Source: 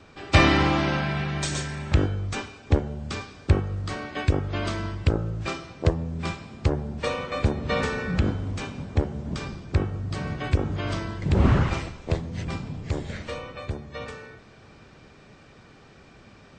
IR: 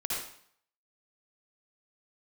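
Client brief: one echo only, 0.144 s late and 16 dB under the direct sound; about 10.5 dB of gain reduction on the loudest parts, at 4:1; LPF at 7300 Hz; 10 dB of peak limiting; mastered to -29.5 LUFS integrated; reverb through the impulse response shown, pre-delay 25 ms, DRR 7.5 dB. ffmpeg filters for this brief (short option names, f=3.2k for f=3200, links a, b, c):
-filter_complex "[0:a]lowpass=7.3k,acompressor=threshold=-26dB:ratio=4,alimiter=limit=-22.5dB:level=0:latency=1,aecho=1:1:144:0.158,asplit=2[a][b];[1:a]atrim=start_sample=2205,adelay=25[c];[b][c]afir=irnorm=-1:irlink=0,volume=-13dB[d];[a][d]amix=inputs=2:normalize=0,volume=4dB"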